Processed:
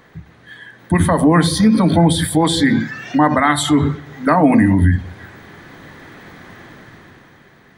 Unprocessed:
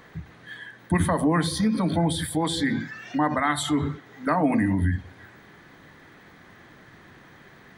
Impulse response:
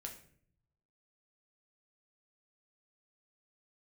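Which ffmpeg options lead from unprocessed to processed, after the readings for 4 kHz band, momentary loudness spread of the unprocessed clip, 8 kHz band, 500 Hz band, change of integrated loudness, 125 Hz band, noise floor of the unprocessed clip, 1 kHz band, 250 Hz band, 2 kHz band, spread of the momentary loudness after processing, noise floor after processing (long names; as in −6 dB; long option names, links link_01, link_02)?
+9.0 dB, 18 LU, +9.0 dB, +10.0 dB, +10.0 dB, +10.0 dB, −51 dBFS, +9.5 dB, +10.5 dB, +8.5 dB, 8 LU, −48 dBFS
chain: -filter_complex "[0:a]dynaudnorm=framelen=110:gausssize=17:maxgain=10dB,asplit=2[link_01][link_02];[1:a]atrim=start_sample=2205,lowpass=1100[link_03];[link_02][link_03]afir=irnorm=-1:irlink=0,volume=-10.5dB[link_04];[link_01][link_04]amix=inputs=2:normalize=0,volume=1dB"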